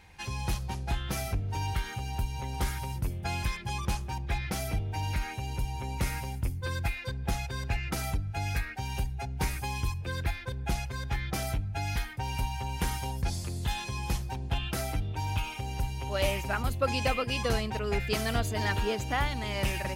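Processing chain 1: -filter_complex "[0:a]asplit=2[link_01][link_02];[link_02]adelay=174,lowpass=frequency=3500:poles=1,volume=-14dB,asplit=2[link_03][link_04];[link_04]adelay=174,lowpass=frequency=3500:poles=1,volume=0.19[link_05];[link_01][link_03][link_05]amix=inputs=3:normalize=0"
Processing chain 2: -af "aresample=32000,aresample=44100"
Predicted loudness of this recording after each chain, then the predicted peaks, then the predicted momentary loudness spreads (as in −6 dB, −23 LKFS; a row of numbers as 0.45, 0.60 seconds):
−32.5, −32.5 LKFS; −13.5, −13.5 dBFS; 5, 5 LU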